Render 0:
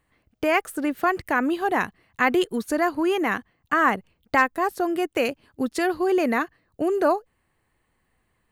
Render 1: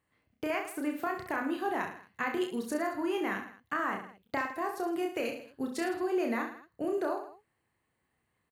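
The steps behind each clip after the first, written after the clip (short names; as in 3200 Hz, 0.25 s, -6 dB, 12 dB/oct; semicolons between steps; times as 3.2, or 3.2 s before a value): HPF 78 Hz; compressor, threshold -21 dBFS, peak gain reduction 8 dB; on a send: reverse bouncing-ball echo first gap 30 ms, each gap 1.2×, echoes 5; on the sum: gain -9 dB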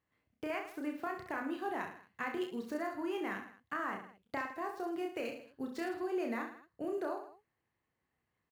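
median filter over 5 samples; gain -5.5 dB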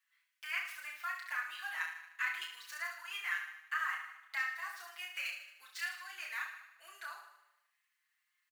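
HPF 1500 Hz 24 dB/oct; on a send: feedback echo 76 ms, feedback 60%, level -12 dB; on the sum: endless flanger 5.6 ms +0.43 Hz; gain +10.5 dB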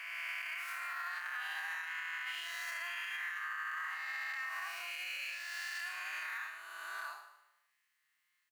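spectral swells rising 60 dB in 2.37 s; limiter -30.5 dBFS, peak gain reduction 11 dB; gain -1.5 dB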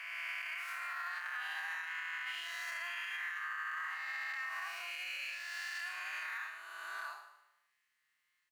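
high shelf 9200 Hz -6 dB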